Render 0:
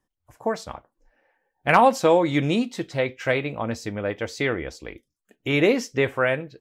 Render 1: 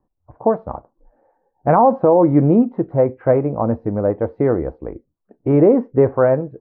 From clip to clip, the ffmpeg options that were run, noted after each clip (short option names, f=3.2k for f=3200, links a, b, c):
-af "lowpass=f=1k:w=0.5412,lowpass=f=1k:w=1.3066,alimiter=level_in=12.5dB:limit=-1dB:release=50:level=0:latency=1,volume=-3dB"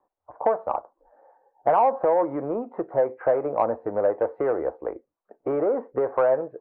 -filter_complex "[0:a]acompressor=threshold=-17dB:ratio=12,asplit=2[a][b];[b]highpass=f=720:p=1,volume=12dB,asoftclip=type=tanh:threshold=-9.5dB[c];[a][c]amix=inputs=2:normalize=0,lowpass=f=1.1k:p=1,volume=-6dB,acrossover=split=440 2200:gain=0.126 1 0.251[d][e][f];[d][e][f]amix=inputs=3:normalize=0,volume=3dB"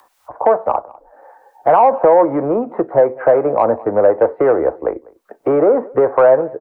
-filter_complex "[0:a]acrossover=split=160|250|1200[a][b][c][d];[d]acompressor=mode=upward:threshold=-50dB:ratio=2.5[e];[a][b][c][e]amix=inputs=4:normalize=0,asplit=2[f][g];[g]adelay=198.3,volume=-24dB,highshelf=f=4k:g=-4.46[h];[f][h]amix=inputs=2:normalize=0,alimiter=level_in=12dB:limit=-1dB:release=50:level=0:latency=1,volume=-1dB"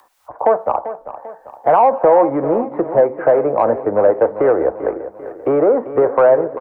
-af "aecho=1:1:393|786|1179|1572|1965:0.224|0.105|0.0495|0.0232|0.0109,volume=-1dB"